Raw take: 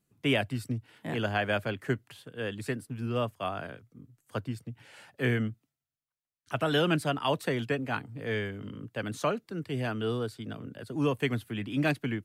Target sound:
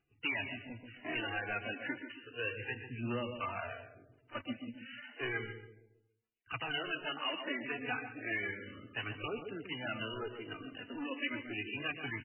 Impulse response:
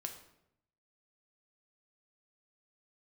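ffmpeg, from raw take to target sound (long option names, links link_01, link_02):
-filter_complex "[0:a]highshelf=frequency=2400:gain=5,acompressor=threshold=-28dB:ratio=12,flanger=delay=2.5:depth=1:regen=-12:speed=0.76:shape=sinusoidal,asoftclip=type=hard:threshold=-33dB,aphaser=in_gain=1:out_gain=1:delay=4.3:decay=0.57:speed=0.32:type=triangular,asplit=2[link_01][link_02];[link_02]adelay=137,lowpass=frequency=910:poles=1,volume=-6dB,asplit=2[link_03][link_04];[link_04]adelay=137,lowpass=frequency=910:poles=1,volume=0.45,asplit=2[link_05][link_06];[link_06]adelay=137,lowpass=frequency=910:poles=1,volume=0.45,asplit=2[link_07][link_08];[link_08]adelay=137,lowpass=frequency=910:poles=1,volume=0.45,asplit=2[link_09][link_10];[link_10]adelay=137,lowpass=frequency=910:poles=1,volume=0.45[link_11];[link_01][link_03][link_05][link_07][link_09][link_11]amix=inputs=6:normalize=0,crystalizer=i=9:c=0,asplit=2[link_12][link_13];[link_13]highpass=230,equalizer=frequency=230:width_type=q:width=4:gain=5,equalizer=frequency=470:width_type=q:width=4:gain=5,equalizer=frequency=860:width_type=q:width=4:gain=-9,equalizer=frequency=1200:width_type=q:width=4:gain=-8,equalizer=frequency=2100:width_type=q:width=4:gain=5,equalizer=frequency=3100:width_type=q:width=4:gain=5,lowpass=frequency=4300:width=0.5412,lowpass=frequency=4300:width=1.3066[link_14];[1:a]atrim=start_sample=2205,lowshelf=frequency=170:gain=-12,adelay=119[link_15];[link_14][link_15]afir=irnorm=-1:irlink=0,volume=-12dB[link_16];[link_12][link_16]amix=inputs=2:normalize=0,volume=-5.5dB" -ar 12000 -c:a libmp3lame -b:a 8k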